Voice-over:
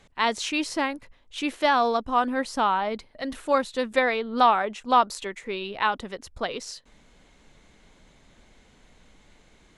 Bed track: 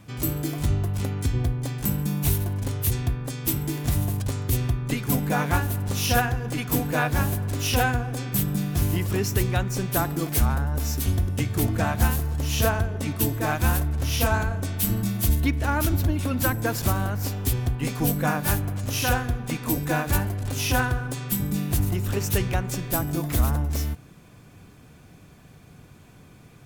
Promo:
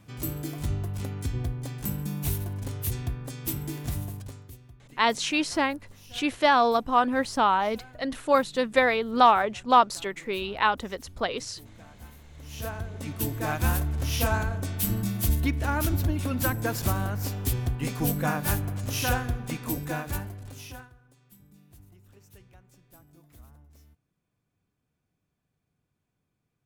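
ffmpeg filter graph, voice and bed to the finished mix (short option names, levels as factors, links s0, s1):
-filter_complex "[0:a]adelay=4800,volume=1.12[s0];[1:a]volume=7.5,afade=t=out:st=3.77:d=0.8:silence=0.0944061,afade=t=in:st=12.29:d=1.35:silence=0.0668344,afade=t=out:st=19.31:d=1.59:silence=0.0446684[s1];[s0][s1]amix=inputs=2:normalize=0"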